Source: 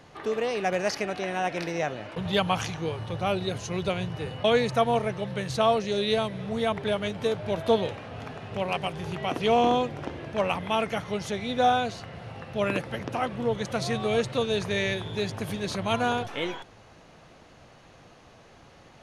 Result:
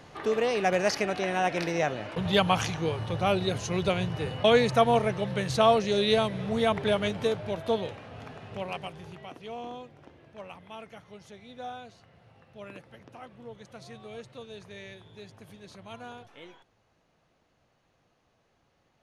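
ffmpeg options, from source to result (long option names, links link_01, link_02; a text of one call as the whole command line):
ffmpeg -i in.wav -af "volume=1.5dB,afade=type=out:start_time=7.08:duration=0.51:silence=0.473151,afade=type=out:start_time=8.5:duration=0.9:silence=0.237137" out.wav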